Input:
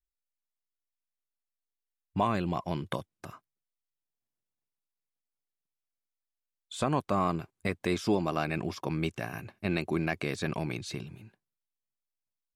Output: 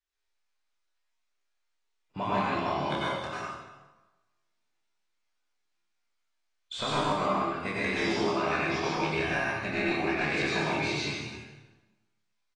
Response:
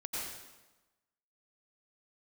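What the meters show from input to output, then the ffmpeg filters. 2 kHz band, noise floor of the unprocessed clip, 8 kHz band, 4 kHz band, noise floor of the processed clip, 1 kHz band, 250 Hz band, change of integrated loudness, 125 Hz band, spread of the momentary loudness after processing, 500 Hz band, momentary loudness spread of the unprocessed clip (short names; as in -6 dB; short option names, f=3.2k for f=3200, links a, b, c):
+8.5 dB, under -85 dBFS, +2.5 dB, +7.5 dB, -77 dBFS, +4.0 dB, 0.0 dB, +3.0 dB, -2.5 dB, 9 LU, +2.5 dB, 11 LU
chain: -filter_complex "[0:a]highshelf=f=5.1k:g=3.5,acompressor=threshold=-31dB:ratio=8,lowpass=6.7k,equalizer=f=440:t=o:w=1.7:g=-3,bandreject=f=60:t=h:w=6,bandreject=f=120:t=h:w=6,bandreject=f=180:t=h:w=6,asplit=2[a][b];[b]adelay=15,volume=-9dB[c];[a][c]amix=inputs=2:normalize=0,aecho=1:1:27|56:0.631|0.2,asplit=2[d][e];[e]highpass=f=720:p=1,volume=13dB,asoftclip=type=tanh:threshold=-19.5dB[f];[d][f]amix=inputs=2:normalize=0,lowpass=f=3.6k:p=1,volume=-6dB[g];[1:a]atrim=start_sample=2205[h];[g][h]afir=irnorm=-1:irlink=0,acrossover=split=4800[i][j];[j]acompressor=threshold=-49dB:ratio=4:attack=1:release=60[k];[i][k]amix=inputs=2:normalize=0,volume=3dB" -ar 22050 -c:a aac -b:a 32k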